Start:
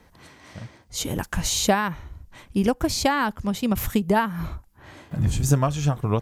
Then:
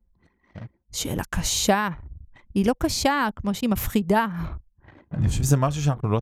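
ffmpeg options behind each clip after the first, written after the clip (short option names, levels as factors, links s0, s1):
-af "anlmdn=0.251"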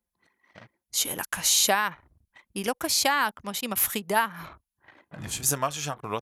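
-af "highpass=f=1300:p=1,equalizer=f=11000:t=o:w=0.24:g=10.5,volume=1.41"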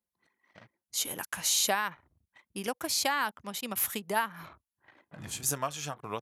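-af "highpass=73,volume=0.531"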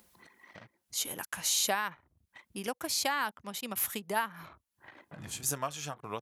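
-af "acompressor=mode=upward:threshold=0.00891:ratio=2.5,volume=0.794"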